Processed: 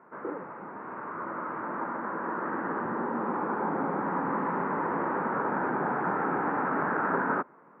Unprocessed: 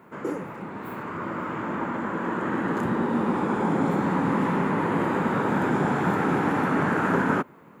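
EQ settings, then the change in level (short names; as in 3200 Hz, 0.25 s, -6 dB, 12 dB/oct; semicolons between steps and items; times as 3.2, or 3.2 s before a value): HPF 670 Hz 6 dB/oct; LPF 1600 Hz 24 dB/oct; 0.0 dB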